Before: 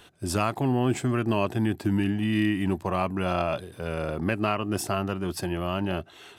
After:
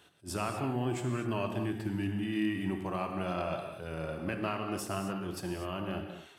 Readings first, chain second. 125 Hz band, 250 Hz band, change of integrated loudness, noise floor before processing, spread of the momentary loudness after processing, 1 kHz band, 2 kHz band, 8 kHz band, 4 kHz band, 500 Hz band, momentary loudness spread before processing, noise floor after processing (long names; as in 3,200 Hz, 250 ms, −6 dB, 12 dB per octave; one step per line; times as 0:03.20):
−8.0 dB, −7.5 dB, −7.5 dB, −52 dBFS, 6 LU, −7.5 dB, −7.5 dB, −7.5 dB, −7.5 dB, −7.5 dB, 6 LU, −56 dBFS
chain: high-pass filter 75 Hz
reverb whose tail is shaped and stops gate 270 ms flat, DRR 3.5 dB
level that may rise only so fast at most 340 dB per second
level −9 dB